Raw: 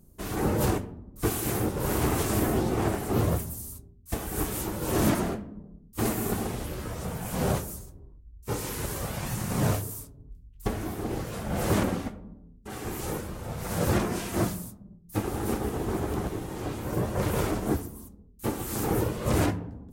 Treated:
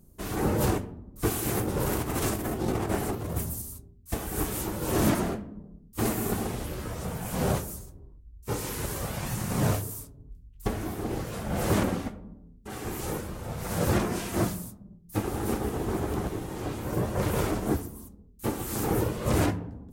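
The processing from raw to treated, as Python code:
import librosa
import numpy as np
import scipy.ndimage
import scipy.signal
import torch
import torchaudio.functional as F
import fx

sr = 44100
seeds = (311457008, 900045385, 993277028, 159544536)

y = fx.over_compress(x, sr, threshold_db=-28.0, ratio=-0.5, at=(1.57, 3.62))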